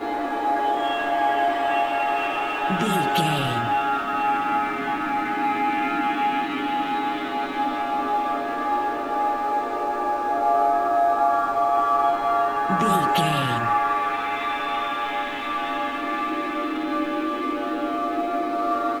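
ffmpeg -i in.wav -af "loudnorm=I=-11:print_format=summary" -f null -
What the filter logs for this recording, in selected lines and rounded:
Input Integrated:    -23.4 LUFS
Input True Peak:      -9.0 dBTP
Input LRA:             4.5 LU
Input Threshold:     -33.4 LUFS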